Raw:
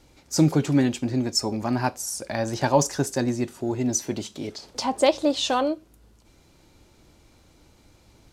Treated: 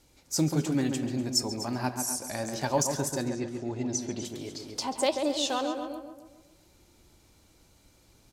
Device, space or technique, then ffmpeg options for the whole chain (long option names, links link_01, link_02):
ducked delay: -filter_complex "[0:a]asplit=3[link_01][link_02][link_03];[link_02]adelay=246,volume=-5.5dB[link_04];[link_03]apad=whole_len=378101[link_05];[link_04][link_05]sidechaincompress=threshold=-35dB:ratio=3:attack=16:release=299[link_06];[link_01][link_06]amix=inputs=2:normalize=0,asettb=1/sr,asplit=3[link_07][link_08][link_09];[link_07]atrim=end=3.284[link_10];[link_08]atrim=start=3.28:end=4.25,asetpts=PTS-STARTPTS,afade=type=in:duration=0.004:curve=qsin,afade=type=out:start_time=0.966:duration=0.004:curve=qsin,lowpass=5300[link_11];[link_09]atrim=start=4.246[link_12];[link_10][link_11]acrossfade=duration=0.004:curve1=hsin:curve2=qsin[link_13];[link_13][link_12]acrossfade=duration=0.004:curve1=qsin:curve2=hsin,aemphasis=mode=production:type=cd,asplit=2[link_14][link_15];[link_15]adelay=137,lowpass=frequency=2000:poles=1,volume=-5.5dB,asplit=2[link_16][link_17];[link_17]adelay=137,lowpass=frequency=2000:poles=1,volume=0.5,asplit=2[link_18][link_19];[link_19]adelay=137,lowpass=frequency=2000:poles=1,volume=0.5,asplit=2[link_20][link_21];[link_21]adelay=137,lowpass=frequency=2000:poles=1,volume=0.5,asplit=2[link_22][link_23];[link_23]adelay=137,lowpass=frequency=2000:poles=1,volume=0.5,asplit=2[link_24][link_25];[link_25]adelay=137,lowpass=frequency=2000:poles=1,volume=0.5[link_26];[link_14][link_16][link_18][link_20][link_22][link_24][link_26]amix=inputs=7:normalize=0,volume=-7.5dB"